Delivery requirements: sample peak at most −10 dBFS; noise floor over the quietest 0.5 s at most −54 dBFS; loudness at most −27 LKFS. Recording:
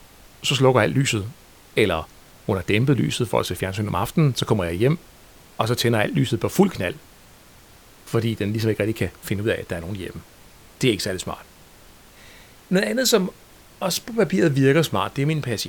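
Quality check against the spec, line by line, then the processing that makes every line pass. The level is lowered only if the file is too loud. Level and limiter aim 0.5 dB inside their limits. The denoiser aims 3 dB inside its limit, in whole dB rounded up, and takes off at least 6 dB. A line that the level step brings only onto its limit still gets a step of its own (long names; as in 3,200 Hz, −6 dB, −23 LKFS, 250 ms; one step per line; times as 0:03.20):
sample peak −3.0 dBFS: out of spec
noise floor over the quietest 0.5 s −49 dBFS: out of spec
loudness −22.0 LKFS: out of spec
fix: level −5.5 dB
brickwall limiter −10.5 dBFS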